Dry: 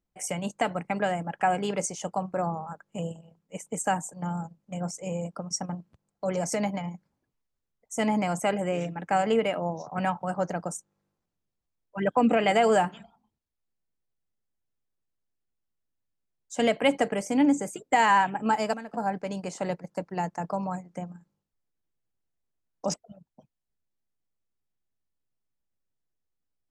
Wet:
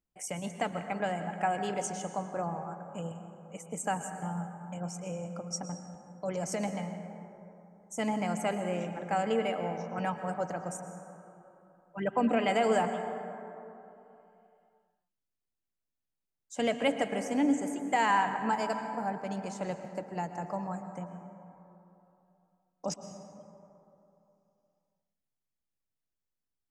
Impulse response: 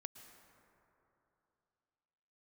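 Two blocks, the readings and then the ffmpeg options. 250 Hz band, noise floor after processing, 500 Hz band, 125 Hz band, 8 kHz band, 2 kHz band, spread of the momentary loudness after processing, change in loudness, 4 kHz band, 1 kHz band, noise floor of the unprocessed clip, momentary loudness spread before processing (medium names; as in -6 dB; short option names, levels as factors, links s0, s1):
-4.5 dB, under -85 dBFS, -5.0 dB, -4.5 dB, -5.5 dB, -5.0 dB, 18 LU, -5.0 dB, -5.0 dB, -4.5 dB, -83 dBFS, 14 LU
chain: -filter_complex "[1:a]atrim=start_sample=2205[s0];[0:a][s0]afir=irnorm=-1:irlink=0"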